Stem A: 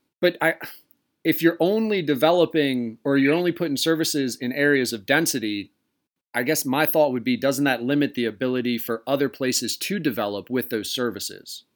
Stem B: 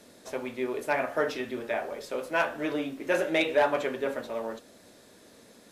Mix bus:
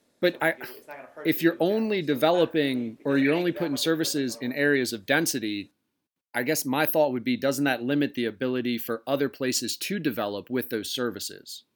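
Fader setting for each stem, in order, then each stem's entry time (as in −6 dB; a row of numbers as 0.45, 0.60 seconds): −3.5, −14.5 decibels; 0.00, 0.00 seconds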